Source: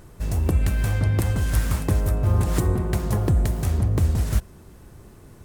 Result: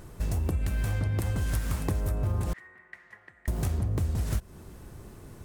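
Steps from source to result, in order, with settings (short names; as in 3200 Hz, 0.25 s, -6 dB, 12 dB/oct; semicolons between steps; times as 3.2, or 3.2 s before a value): 2.53–3.48 band-pass 1900 Hz, Q 12; compressor, threshold -25 dBFS, peak gain reduction 10 dB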